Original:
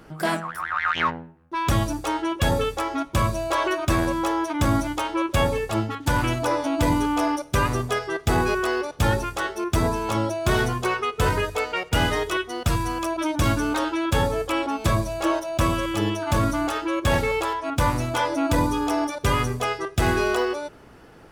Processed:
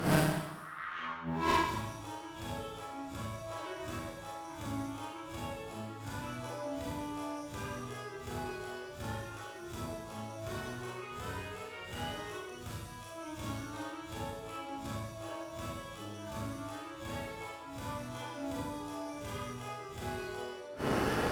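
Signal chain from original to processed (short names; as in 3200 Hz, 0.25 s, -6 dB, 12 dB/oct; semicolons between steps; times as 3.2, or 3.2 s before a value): spectral swells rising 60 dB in 0.37 s; HPF 61 Hz; flipped gate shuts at -24 dBFS, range -35 dB; overloaded stage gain 36 dB; Schroeder reverb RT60 0.94 s, combs from 29 ms, DRR -5.5 dB; tube stage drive 30 dB, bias 0.65; gain +13.5 dB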